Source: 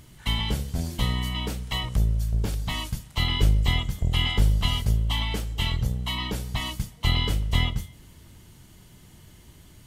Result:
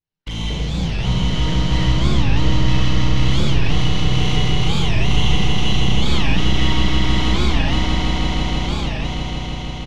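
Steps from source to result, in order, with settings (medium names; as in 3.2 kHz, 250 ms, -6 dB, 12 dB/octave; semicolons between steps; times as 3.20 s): one-bit delta coder 32 kbps, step -31.5 dBFS; gate -33 dBFS, range -56 dB; treble shelf 3.4 kHz -6 dB; comb 6.5 ms, depth 44%; in parallel at 0 dB: peak limiter -17 dBFS, peak gain reduction 7.5 dB; on the sum: touch-sensitive flanger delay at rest 11.5 ms, full sweep at -17.5 dBFS; saturation -21 dBFS, distortion -8 dB; on a send: echo with a slow build-up 160 ms, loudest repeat 5, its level -4.5 dB; on the sum: Schroeder reverb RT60 1.2 s, combs from 32 ms, DRR -3 dB; warped record 45 rpm, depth 250 cents; trim -1 dB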